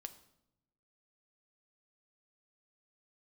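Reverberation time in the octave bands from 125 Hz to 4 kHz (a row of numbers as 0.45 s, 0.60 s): 1.3 s, 1.2 s, 0.90 s, 0.75 s, 0.65 s, 0.65 s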